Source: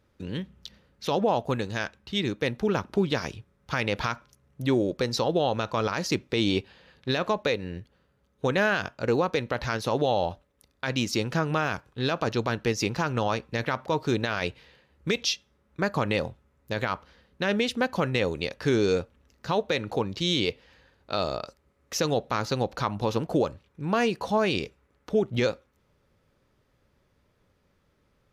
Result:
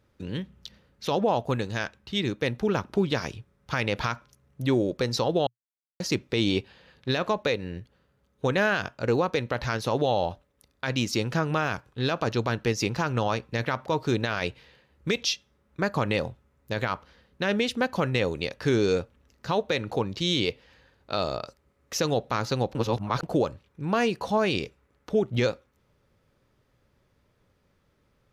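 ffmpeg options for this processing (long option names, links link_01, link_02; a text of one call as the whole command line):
ffmpeg -i in.wav -filter_complex "[0:a]asplit=5[link_01][link_02][link_03][link_04][link_05];[link_01]atrim=end=5.47,asetpts=PTS-STARTPTS,afade=type=out:start_time=5.466:duration=0.004:curve=hsin[link_06];[link_02]atrim=start=5.47:end=6,asetpts=PTS-STARTPTS,volume=0[link_07];[link_03]atrim=start=6:end=22.752,asetpts=PTS-STARTPTS,afade=type=in:duration=0.004:curve=hsin[link_08];[link_04]atrim=start=22.748:end=23.232,asetpts=PTS-STARTPTS,areverse[link_09];[link_05]atrim=start=23.228[link_10];[link_06][link_07][link_08]concat=n=3:v=0:a=1[link_11];[link_11][link_09]acrossfade=duration=0.004:curve1=hsin:curve2=hsin[link_12];[link_12][link_10]acrossfade=duration=0.004:curve1=hsin:curve2=hsin,equalizer=frequency=120:width=5.4:gain=3" out.wav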